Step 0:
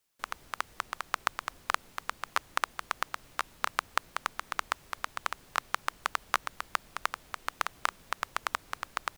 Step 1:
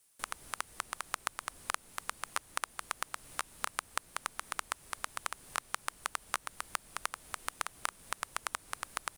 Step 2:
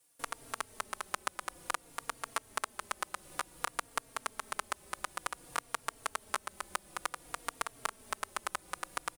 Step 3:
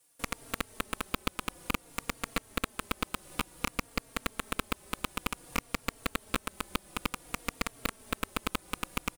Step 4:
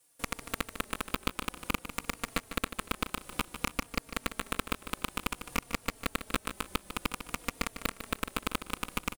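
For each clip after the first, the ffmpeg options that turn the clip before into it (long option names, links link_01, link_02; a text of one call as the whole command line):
ffmpeg -i in.wav -af "equalizer=frequency=9500:width_type=o:width=0.63:gain=14,acompressor=threshold=-42dB:ratio=2,volume=3.5dB" out.wav
ffmpeg -i in.wav -filter_complex "[0:a]equalizer=frequency=430:width_type=o:width=2.2:gain=7,asplit=2[link_01][link_02];[link_02]adelay=3.7,afreqshift=-0.55[link_03];[link_01][link_03]amix=inputs=2:normalize=1,volume=1.5dB" out.wav
ffmpeg -i in.wav -af "aeval=exprs='0.316*(cos(1*acos(clip(val(0)/0.316,-1,1)))-cos(1*PI/2))+0.126*(cos(6*acos(clip(val(0)/0.316,-1,1)))-cos(6*PI/2))':channel_layout=same,aeval=exprs='0.422*sin(PI/2*1.58*val(0)/0.422)':channel_layout=same,volume=-5.5dB" out.wav
ffmpeg -i in.wav -af "aecho=1:1:150|300|450:0.282|0.0874|0.0271" out.wav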